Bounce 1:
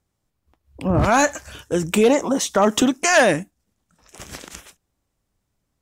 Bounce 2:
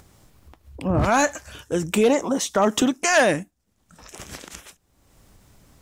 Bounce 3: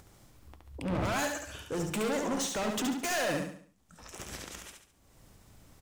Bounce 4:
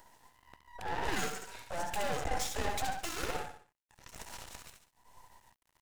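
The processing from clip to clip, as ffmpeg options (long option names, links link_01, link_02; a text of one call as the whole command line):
ffmpeg -i in.wav -af "acompressor=mode=upward:threshold=-31dB:ratio=2.5,volume=-2.5dB" out.wav
ffmpeg -i in.wav -filter_complex "[0:a]asoftclip=type=hard:threshold=-25.5dB,asplit=2[link_01][link_02];[link_02]aecho=0:1:70|140|210|280|350:0.596|0.238|0.0953|0.0381|0.0152[link_03];[link_01][link_03]amix=inputs=2:normalize=0,volume=-5dB" out.wav
ffmpeg -i in.wav -af "afftfilt=real='real(if(between(b,1,1008),(2*floor((b-1)/48)+1)*48-b,b),0)':imag='imag(if(between(b,1,1008),(2*floor((b-1)/48)+1)*48-b,b),0)*if(between(b,1,1008),-1,1)':win_size=2048:overlap=0.75,asubboost=boost=5.5:cutoff=120,aeval=exprs='max(val(0),0)':channel_layout=same" out.wav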